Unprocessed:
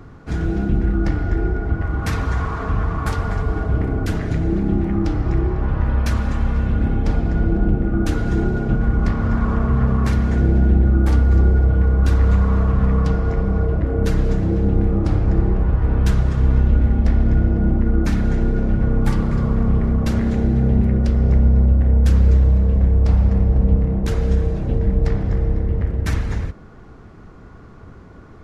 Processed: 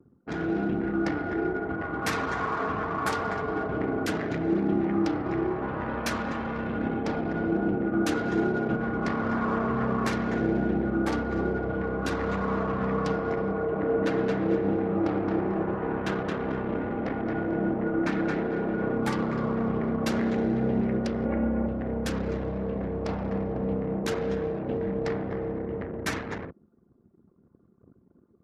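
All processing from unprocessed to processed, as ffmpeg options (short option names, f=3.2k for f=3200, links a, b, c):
-filter_complex "[0:a]asettb=1/sr,asplit=3[a][b][c];[a]atrim=end=13.524[d];[b]atrim=start=13.52:end=18.94,asetpts=PTS-STARTPTS,afade=t=in:d=0.004:c=qsin,afade=t=out:st=5.416:d=0.004:c=qsin,bass=f=250:g=-3,treble=f=4k:g=-10,aecho=1:1:221|442|663|884:0.631|0.177|0.0495|0.0139,atrim=end_sample=239022[e];[c]atrim=start=18.936[f];[d][e]acrossfade=d=0.004:c1=hsin:c2=qsin[g];[g][f]acrossfade=d=0.004:c1=qsin:c2=hsin,asettb=1/sr,asplit=3[h][i][j];[h]atrim=end=21.254[k];[i]atrim=start=21.25:end=21.67,asetpts=PTS-STARTPTS,afade=t=in:d=0.004:c=qsin,afade=t=out:st=0.416:d=0.004:c=qsin,lowpass=f=2.6k:w=0.5412,lowpass=f=2.6k:w=1.3066,aecho=1:1:3.6:0.76,atrim=end_sample=18522[l];[j]atrim=start=21.666[m];[k][l]acrossfade=d=0.004:c1=hsin:c2=qsin[n];[n][m]acrossfade=d=0.004:c1=qsin:c2=hsin,anlmdn=10,highpass=280"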